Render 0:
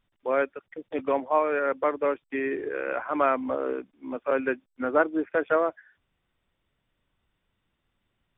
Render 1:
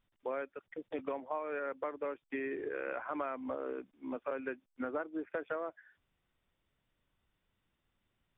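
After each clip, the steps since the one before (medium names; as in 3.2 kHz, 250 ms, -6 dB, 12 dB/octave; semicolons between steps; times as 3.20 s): compression 6:1, threshold -30 dBFS, peak gain reduction 13.5 dB; trim -4.5 dB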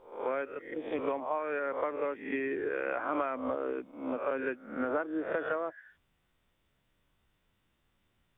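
reverse spectral sustain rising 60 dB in 0.53 s; trim +4 dB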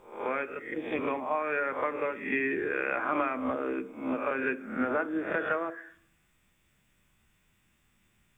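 reverberation RT60 0.65 s, pre-delay 3 ms, DRR 11.5 dB; trim +9 dB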